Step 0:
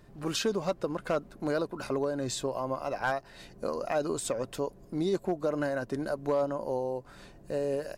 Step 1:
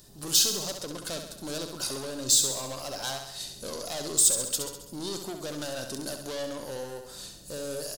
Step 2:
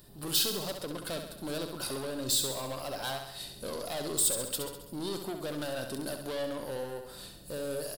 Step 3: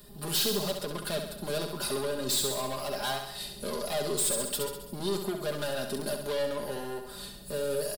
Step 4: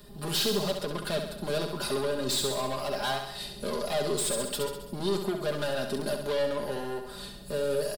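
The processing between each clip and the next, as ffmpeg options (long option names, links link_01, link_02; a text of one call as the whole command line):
ffmpeg -i in.wav -af "aeval=exprs='(tanh(39.8*val(0)+0.25)-tanh(0.25))/39.8':channel_layout=same,aexciter=amount=7.9:drive=5.8:freq=3300,aecho=1:1:67|134|201|268|335|402|469:0.447|0.255|0.145|0.0827|0.0472|0.0269|0.0153,volume=-1.5dB" out.wav
ffmpeg -i in.wav -af "equalizer=frequency=6400:width_type=o:width=0.64:gain=-15" out.wav
ffmpeg -i in.wav -filter_complex "[0:a]aecho=1:1:4.9:0.77,acrossover=split=250|930|2800[link_01][link_02][link_03][link_04];[link_04]asoftclip=type=tanh:threshold=-27dB[link_05];[link_01][link_02][link_03][link_05]amix=inputs=4:normalize=0,volume=2dB" out.wav
ffmpeg -i in.wav -af "highshelf=frequency=7900:gain=-10,volume=2.5dB" out.wav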